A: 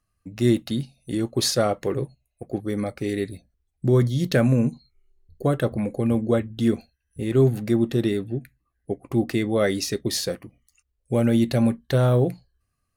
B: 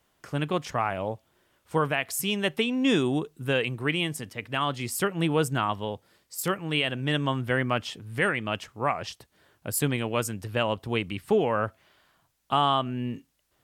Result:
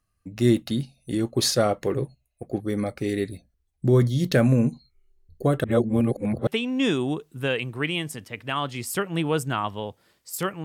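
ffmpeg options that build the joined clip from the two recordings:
-filter_complex "[0:a]apad=whole_dur=10.64,atrim=end=10.64,asplit=2[a][b];[a]atrim=end=5.642[c];[b]atrim=start=5.638:end=6.472,asetpts=PTS-STARTPTS,areverse[d];[1:a]atrim=start=2.518:end=6.69[e];[c][d]acrossfade=d=0.004:c1=hsin:c2=hsin[f];[f][e]acrossfade=d=0.004:c1=hsin:c2=hsin"

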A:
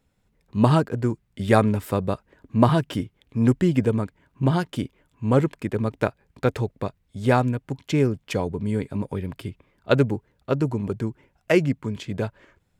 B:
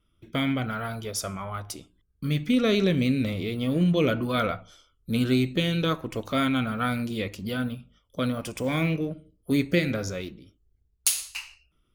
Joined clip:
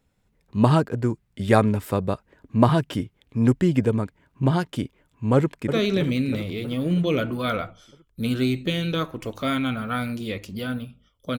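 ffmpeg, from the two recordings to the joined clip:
-filter_complex "[0:a]apad=whole_dur=11.38,atrim=end=11.38,atrim=end=5.732[a];[1:a]atrim=start=2.628:end=8.28[b];[a][b]acrossfade=d=0.004:c1=hsin:c2=hsin,asplit=2[c][d];[d]afade=t=in:st=5.36:d=0.01,afade=t=out:st=5.73:d=0.01,aecho=0:1:320|640|960|1280|1600|1920|2240|2560|2880:0.421697|0.274103|0.178167|0.115808|0.0752755|0.048929|0.0318039|0.0206725|0.0134371[e];[c][e]amix=inputs=2:normalize=0"

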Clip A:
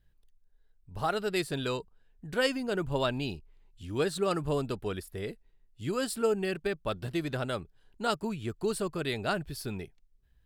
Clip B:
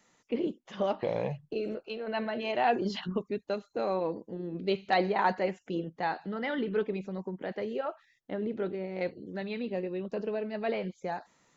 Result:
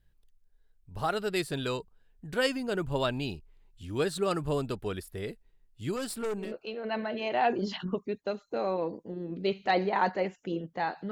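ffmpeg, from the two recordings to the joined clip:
-filter_complex "[0:a]asettb=1/sr,asplit=3[a][b][c];[a]atrim=end=5.964[d];[b]atrim=start=5.96:end=6.54,asetpts=PTS-STARTPTS,afade=t=in:d=0.004:c=qsin,afade=t=out:st=0.576:d=0.004:c=qsin,aeval=exprs='(tanh(28.2*val(0)+0.35)-tanh(0.35))/28.2':c=same[e];[c]atrim=start=6.536[f];[d][e]acrossfade=d=0.004:c1=hsin:c2=qsin[g];[g][f]acrossfade=d=0.004:c1=qsin:c2=hsin,apad=whole_dur=11.11,atrim=end=11.11,atrim=end=6.54,asetpts=PTS-STARTPTS[h];[1:a]atrim=start=1.59:end=6.34,asetpts=PTS-STARTPTS[i];[h][i]acrossfade=d=0.18:c1=tri:c2=tri"

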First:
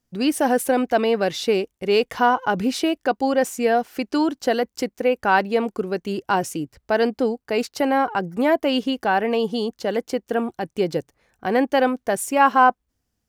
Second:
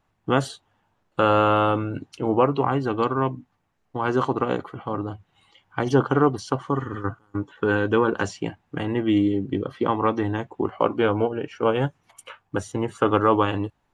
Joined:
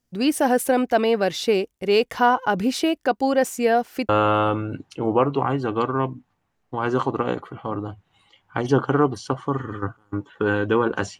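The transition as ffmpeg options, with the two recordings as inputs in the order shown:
-filter_complex "[0:a]apad=whole_dur=11.19,atrim=end=11.19,atrim=end=4.092[a];[1:a]atrim=start=1.308:end=8.41[b];[a][b]acrossfade=d=0.004:c1=hsin:c2=hsin"

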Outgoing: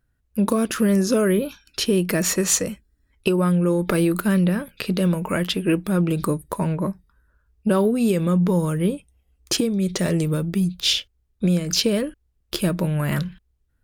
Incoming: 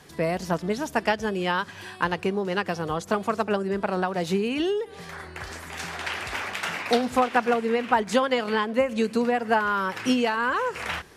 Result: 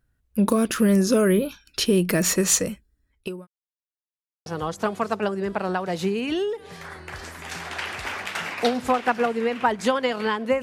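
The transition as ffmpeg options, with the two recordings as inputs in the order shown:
-filter_complex "[0:a]apad=whole_dur=10.62,atrim=end=10.62,asplit=2[a][b];[a]atrim=end=3.47,asetpts=PTS-STARTPTS,afade=t=out:st=2.41:d=1.06:c=qsin[c];[b]atrim=start=3.47:end=4.46,asetpts=PTS-STARTPTS,volume=0[d];[1:a]atrim=start=2.74:end=8.9,asetpts=PTS-STARTPTS,afade=t=in:d=0.004:c=hsin[e];[c][d][e]concat=n=3:v=0:a=1"

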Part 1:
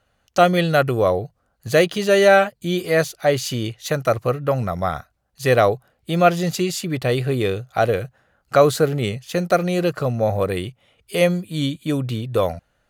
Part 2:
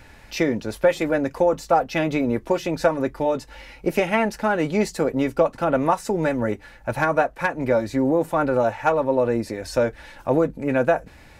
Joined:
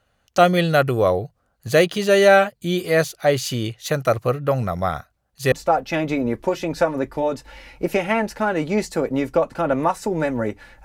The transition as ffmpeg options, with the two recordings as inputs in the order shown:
-filter_complex "[0:a]apad=whole_dur=10.84,atrim=end=10.84,atrim=end=5.522[a];[1:a]atrim=start=1.548:end=6.87[b];[a][b]acrossfade=d=0.004:c1=hsin:c2=hsin"

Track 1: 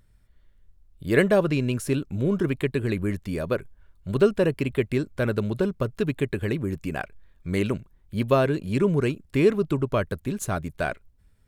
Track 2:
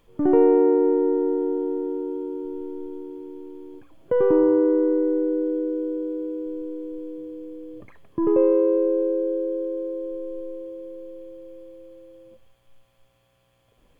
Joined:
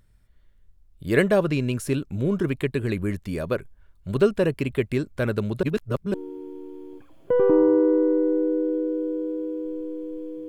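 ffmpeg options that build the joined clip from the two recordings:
-filter_complex "[0:a]apad=whole_dur=10.48,atrim=end=10.48,asplit=2[a][b];[a]atrim=end=5.632[c];[b]atrim=start=5.628:end=6.142,asetpts=PTS-STARTPTS,areverse[d];[1:a]atrim=start=2.948:end=7.29[e];[c][d]acrossfade=d=0.004:c1=hsin:c2=hsin[f];[f][e]acrossfade=d=0.004:c1=hsin:c2=hsin"

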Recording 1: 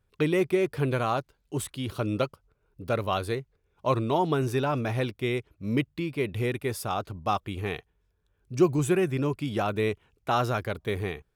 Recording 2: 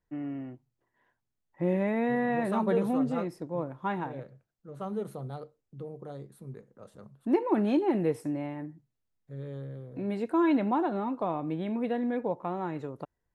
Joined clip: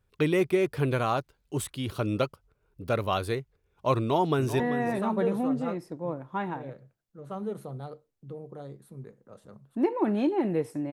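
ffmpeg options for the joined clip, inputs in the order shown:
-filter_complex "[0:a]apad=whole_dur=10.92,atrim=end=10.92,atrim=end=4.602[a];[1:a]atrim=start=2.098:end=8.42[b];[a][b]acrossfade=d=0.004:c1=hsin:c2=hsin,asplit=2[c][d];[d]afade=t=in:st=3.99:d=0.01,afade=t=out:st=4.6:d=0.01,aecho=0:1:390|780:0.266073|0.0266073[e];[c][e]amix=inputs=2:normalize=0"

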